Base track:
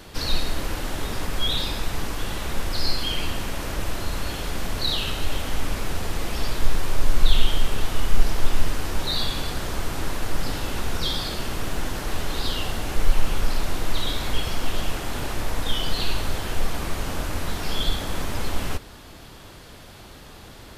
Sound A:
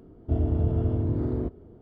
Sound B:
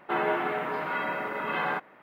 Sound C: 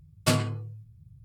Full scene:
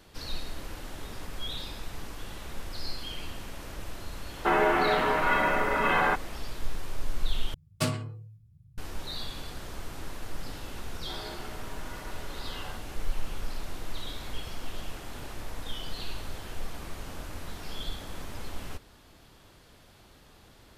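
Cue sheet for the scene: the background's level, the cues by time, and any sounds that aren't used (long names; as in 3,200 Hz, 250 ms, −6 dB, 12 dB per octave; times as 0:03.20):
base track −12 dB
0:04.36: mix in B −13.5 dB + boost into a limiter +19 dB
0:07.54: overwrite with C −5 dB
0:10.98: mix in B −16.5 dB
not used: A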